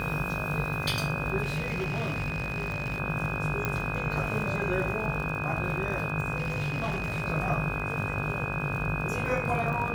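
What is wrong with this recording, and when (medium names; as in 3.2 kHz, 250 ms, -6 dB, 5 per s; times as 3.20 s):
buzz 50 Hz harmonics 33 -36 dBFS
crackle 41 per s -34 dBFS
whine 2.5 kHz -34 dBFS
1.42–3.00 s: clipped -26.5 dBFS
3.65 s: pop -14 dBFS
6.36–7.22 s: clipped -26 dBFS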